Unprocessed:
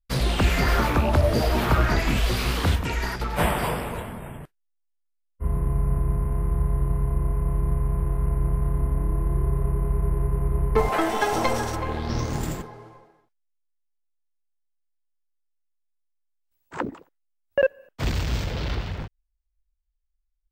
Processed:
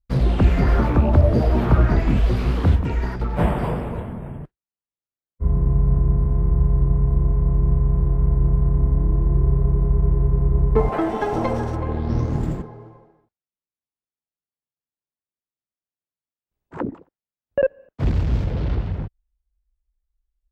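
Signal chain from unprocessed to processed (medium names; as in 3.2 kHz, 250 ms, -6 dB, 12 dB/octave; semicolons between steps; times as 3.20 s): high-pass 190 Hz 6 dB/octave; tilt EQ -4.5 dB/octave; trim -2 dB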